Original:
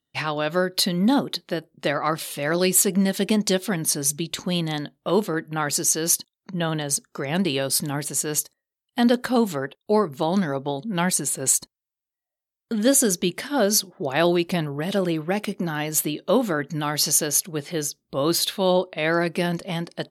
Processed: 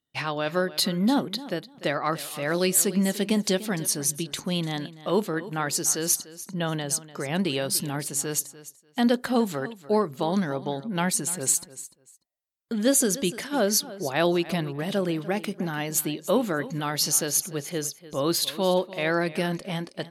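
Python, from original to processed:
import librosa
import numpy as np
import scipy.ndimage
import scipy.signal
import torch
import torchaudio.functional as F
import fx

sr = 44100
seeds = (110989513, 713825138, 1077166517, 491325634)

y = fx.echo_feedback(x, sr, ms=295, feedback_pct=18, wet_db=-16.5)
y = F.gain(torch.from_numpy(y), -3.0).numpy()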